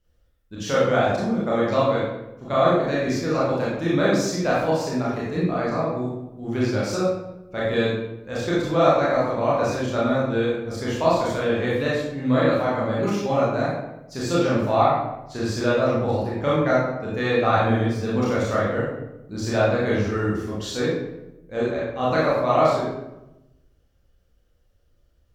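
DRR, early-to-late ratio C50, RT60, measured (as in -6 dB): -8.0 dB, -1.0 dB, 0.95 s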